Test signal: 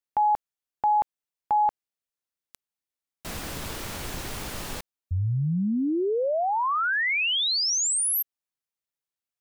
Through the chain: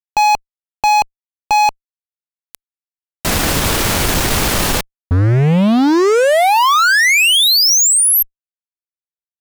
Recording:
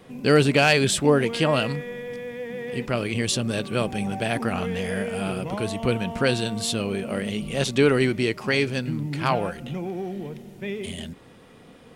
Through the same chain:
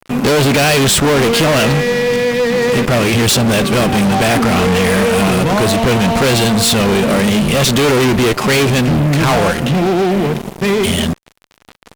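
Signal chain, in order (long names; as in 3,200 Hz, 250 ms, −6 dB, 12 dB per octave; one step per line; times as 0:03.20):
fuzz pedal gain 35 dB, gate −42 dBFS
level +3 dB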